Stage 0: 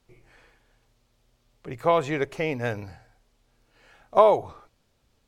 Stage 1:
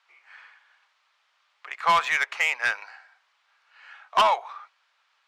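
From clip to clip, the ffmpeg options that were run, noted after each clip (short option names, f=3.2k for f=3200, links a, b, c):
-af "highpass=f=1.1k:w=0.5412,highpass=f=1.1k:w=1.3066,aeval=exprs='0.224*sin(PI/2*2.82*val(0)/0.224)':c=same,adynamicsmooth=sensitivity=1:basefreq=2.9k"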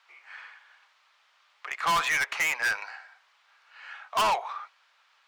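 -af "asoftclip=type=tanh:threshold=-25.5dB,volume=4dB"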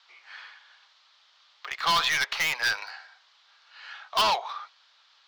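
-filter_complex "[0:a]acrossover=split=250|1800|4700[a][b][c][d];[c]aexciter=amount=5:drive=7.2:freq=3.4k[e];[d]acrusher=bits=6:dc=4:mix=0:aa=0.000001[f];[a][b][e][f]amix=inputs=4:normalize=0"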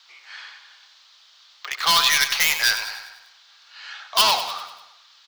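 -filter_complex "[0:a]crystalizer=i=3:c=0,asplit=2[a][b];[b]aecho=0:1:98|196|294|392|490|588:0.316|0.161|0.0823|0.0419|0.0214|0.0109[c];[a][c]amix=inputs=2:normalize=0,volume=1.5dB"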